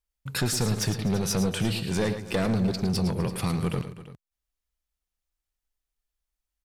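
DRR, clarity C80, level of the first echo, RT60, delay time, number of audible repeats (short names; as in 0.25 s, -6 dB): none, none, -10.0 dB, none, 0.109 s, 3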